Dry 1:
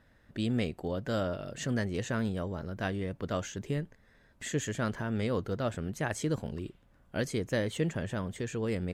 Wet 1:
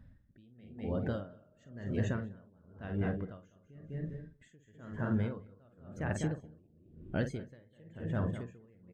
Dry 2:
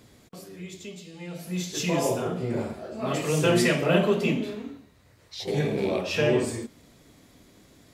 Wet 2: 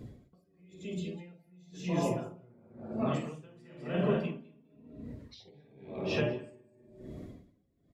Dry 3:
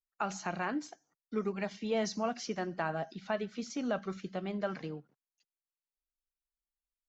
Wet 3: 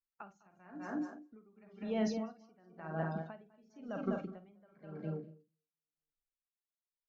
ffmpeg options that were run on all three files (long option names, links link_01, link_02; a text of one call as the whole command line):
ffmpeg -i in.wav -filter_complex "[0:a]acontrast=71,asplit=2[link_01][link_02];[link_02]adelay=50,volume=-7.5dB[link_03];[link_01][link_03]amix=inputs=2:normalize=0,asplit=2[link_04][link_05];[link_05]aecho=0:1:201|402|603:0.422|0.0759|0.0137[link_06];[link_04][link_06]amix=inputs=2:normalize=0,acompressor=threshold=-39dB:ratio=2,bass=frequency=250:gain=5,treble=frequency=4000:gain=-5,asplit=2[link_07][link_08];[link_08]adelay=238,lowpass=frequency=1600:poles=1,volume=-8.5dB,asplit=2[link_09][link_10];[link_10]adelay=238,lowpass=frequency=1600:poles=1,volume=0.24,asplit=2[link_11][link_12];[link_12]adelay=238,lowpass=frequency=1600:poles=1,volume=0.24[link_13];[link_09][link_11][link_13]amix=inputs=3:normalize=0[link_14];[link_07][link_14]amix=inputs=2:normalize=0,afftdn=noise_reduction=14:noise_floor=-48,adynamicequalizer=threshold=0.00158:dfrequency=2300:dqfactor=3.9:tfrequency=2300:tqfactor=3.9:attack=5:release=100:ratio=0.375:range=1.5:mode=cutabove:tftype=bell,aeval=exprs='val(0)*pow(10,-31*(0.5-0.5*cos(2*PI*0.97*n/s))/20)':channel_layout=same" out.wav